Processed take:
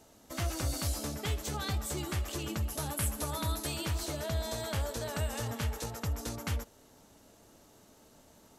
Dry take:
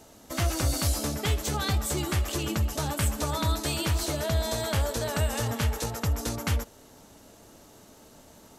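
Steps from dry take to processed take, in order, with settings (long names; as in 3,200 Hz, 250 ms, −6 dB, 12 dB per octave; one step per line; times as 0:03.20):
0:02.67–0:03.67: parametric band 11,000 Hz +14 dB 0.27 octaves
level −7 dB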